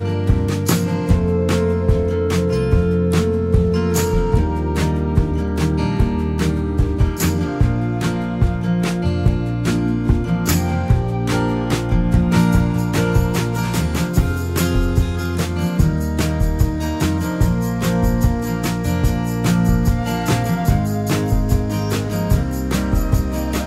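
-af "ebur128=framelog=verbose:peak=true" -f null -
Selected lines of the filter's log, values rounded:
Integrated loudness:
  I:         -18.6 LUFS
  Threshold: -28.6 LUFS
Loudness range:
  LRA:         1.7 LU
  Threshold: -38.6 LUFS
  LRA low:   -19.3 LUFS
  LRA high:  -17.6 LUFS
True peak:
  Peak:       -2.0 dBFS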